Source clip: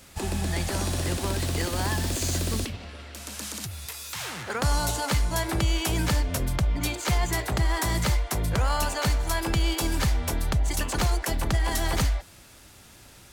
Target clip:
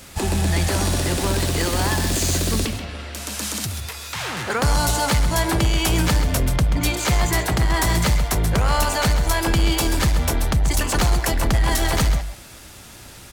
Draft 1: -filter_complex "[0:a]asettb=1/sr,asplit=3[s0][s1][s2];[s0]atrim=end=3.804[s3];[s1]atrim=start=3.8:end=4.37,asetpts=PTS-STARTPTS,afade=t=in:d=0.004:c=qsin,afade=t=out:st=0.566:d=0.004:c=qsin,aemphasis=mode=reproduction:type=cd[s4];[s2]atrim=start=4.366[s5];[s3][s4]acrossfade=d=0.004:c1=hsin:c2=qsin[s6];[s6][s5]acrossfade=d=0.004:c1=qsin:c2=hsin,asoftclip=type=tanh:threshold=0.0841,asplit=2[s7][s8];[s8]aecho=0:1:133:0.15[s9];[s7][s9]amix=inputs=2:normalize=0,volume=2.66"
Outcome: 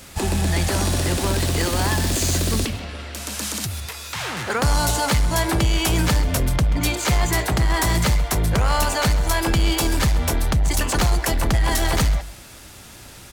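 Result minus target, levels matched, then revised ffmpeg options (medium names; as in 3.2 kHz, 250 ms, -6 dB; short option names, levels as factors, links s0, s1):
echo-to-direct -6.5 dB
-filter_complex "[0:a]asettb=1/sr,asplit=3[s0][s1][s2];[s0]atrim=end=3.804[s3];[s1]atrim=start=3.8:end=4.37,asetpts=PTS-STARTPTS,afade=t=in:d=0.004:c=qsin,afade=t=out:st=0.566:d=0.004:c=qsin,aemphasis=mode=reproduction:type=cd[s4];[s2]atrim=start=4.366[s5];[s3][s4]acrossfade=d=0.004:c1=hsin:c2=qsin[s6];[s6][s5]acrossfade=d=0.004:c1=qsin:c2=hsin,asoftclip=type=tanh:threshold=0.0841,asplit=2[s7][s8];[s8]aecho=0:1:133:0.316[s9];[s7][s9]amix=inputs=2:normalize=0,volume=2.66"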